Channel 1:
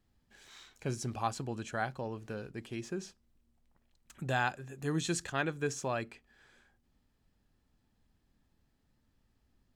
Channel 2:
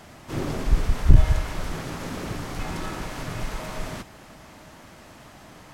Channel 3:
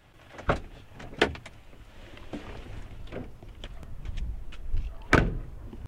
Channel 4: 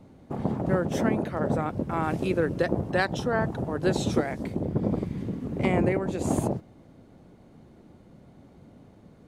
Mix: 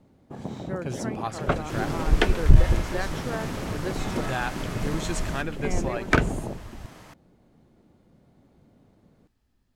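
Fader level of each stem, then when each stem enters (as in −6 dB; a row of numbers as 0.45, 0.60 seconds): +1.5, −1.0, +0.5, −7.0 decibels; 0.00, 1.40, 1.00, 0.00 seconds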